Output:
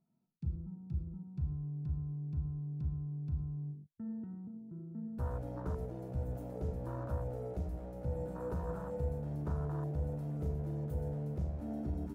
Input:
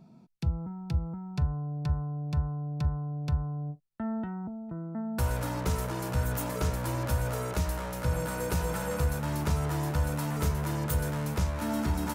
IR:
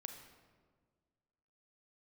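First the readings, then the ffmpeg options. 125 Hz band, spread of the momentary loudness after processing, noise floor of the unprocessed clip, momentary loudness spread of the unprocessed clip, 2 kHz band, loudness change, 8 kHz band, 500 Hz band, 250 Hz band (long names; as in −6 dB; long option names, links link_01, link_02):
−7.5 dB, 6 LU, −53 dBFS, 6 LU, −21.5 dB, −8.0 dB, below −25 dB, −7.0 dB, −8.0 dB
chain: -filter_complex "[0:a]highshelf=frequency=2000:gain=-5.5[link_01];[1:a]atrim=start_sample=2205,afade=type=out:start_time=0.18:duration=0.01,atrim=end_sample=8379[link_02];[link_01][link_02]afir=irnorm=-1:irlink=0,afwtdn=0.0178,volume=-3.5dB"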